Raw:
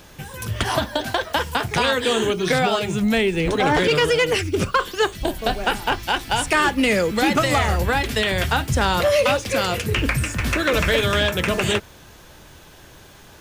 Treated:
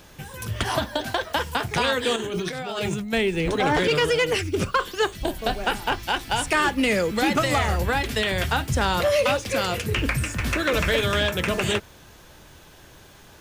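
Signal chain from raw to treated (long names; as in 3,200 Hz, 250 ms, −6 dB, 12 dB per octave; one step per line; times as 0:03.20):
0:02.16–0:03.13: compressor whose output falls as the input rises −26 dBFS, ratio −1
level −3 dB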